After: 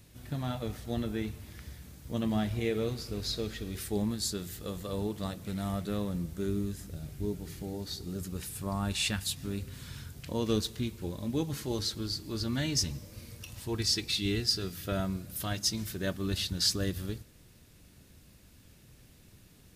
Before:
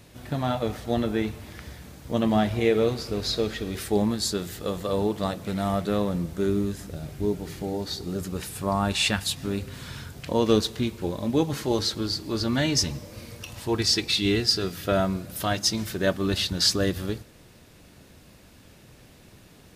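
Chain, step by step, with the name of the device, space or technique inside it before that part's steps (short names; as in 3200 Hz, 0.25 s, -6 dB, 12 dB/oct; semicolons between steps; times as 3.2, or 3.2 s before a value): smiley-face EQ (low shelf 140 Hz +7 dB; bell 720 Hz -4.5 dB 1.6 oct; high shelf 6800 Hz +7.5 dB); gain -8.5 dB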